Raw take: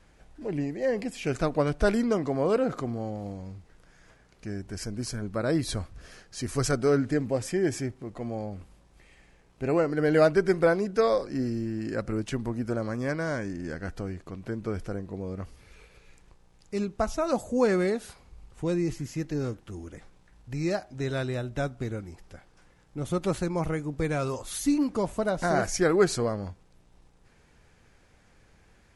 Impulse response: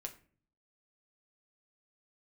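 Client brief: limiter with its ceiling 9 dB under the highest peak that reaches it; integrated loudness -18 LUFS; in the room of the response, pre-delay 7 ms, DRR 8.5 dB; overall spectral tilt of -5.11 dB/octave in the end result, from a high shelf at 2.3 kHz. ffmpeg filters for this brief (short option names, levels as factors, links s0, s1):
-filter_complex "[0:a]highshelf=f=2300:g=6,alimiter=limit=0.133:level=0:latency=1,asplit=2[s0][s1];[1:a]atrim=start_sample=2205,adelay=7[s2];[s1][s2]afir=irnorm=-1:irlink=0,volume=0.531[s3];[s0][s3]amix=inputs=2:normalize=0,volume=3.55"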